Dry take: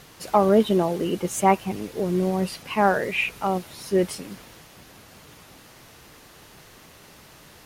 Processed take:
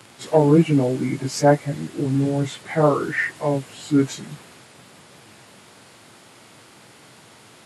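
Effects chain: pitch shift by moving bins -5 st; HPF 110 Hz 24 dB/oct; gain +4 dB

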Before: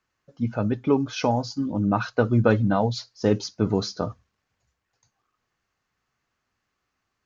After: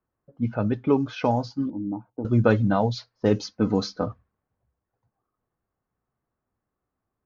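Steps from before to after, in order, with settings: low-pass opened by the level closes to 800 Hz, open at -16 dBFS; 1.7–2.25 vocal tract filter u; 3.38–4.07 comb 3.9 ms, depth 50%

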